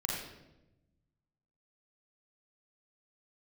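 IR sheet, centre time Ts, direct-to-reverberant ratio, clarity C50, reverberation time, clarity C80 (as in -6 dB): 66 ms, -3.0 dB, -0.5 dB, 0.95 s, 2.5 dB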